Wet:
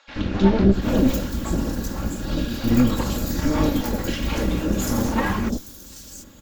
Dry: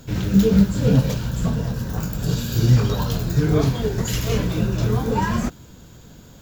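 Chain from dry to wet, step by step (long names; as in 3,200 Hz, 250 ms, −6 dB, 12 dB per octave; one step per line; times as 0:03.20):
lower of the sound and its delayed copy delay 3.6 ms
three-band delay without the direct sound mids, lows, highs 80/740 ms, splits 710/4,700 Hz
level +1.5 dB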